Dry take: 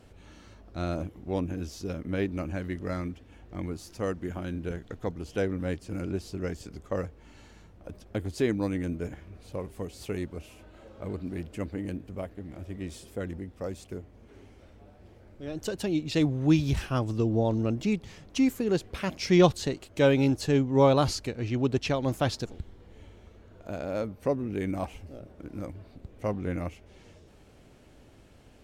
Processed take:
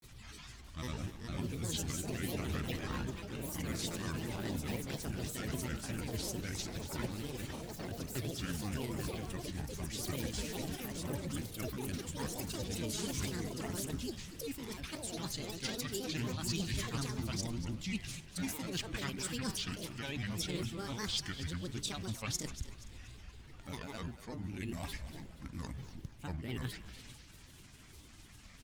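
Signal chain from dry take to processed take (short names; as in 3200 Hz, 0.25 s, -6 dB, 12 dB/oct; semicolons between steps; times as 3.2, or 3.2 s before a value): bin magnitudes rounded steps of 15 dB; high shelf 2400 Hz +11.5 dB; de-hum 139.4 Hz, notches 29; reverse; compressor 6:1, threshold -34 dBFS, peak gain reduction 18.5 dB; reverse; bell 500 Hz -15 dB 0.98 oct; echoes that change speed 0.652 s, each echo +5 st, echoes 3; grains, spray 14 ms, pitch spread up and down by 7 st; on a send: frequency-shifting echo 0.238 s, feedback 41%, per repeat -61 Hz, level -13 dB; on the sum: gain +1 dB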